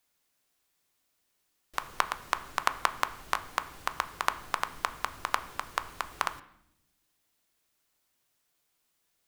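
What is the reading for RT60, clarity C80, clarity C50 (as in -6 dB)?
not exponential, 18.0 dB, 15.5 dB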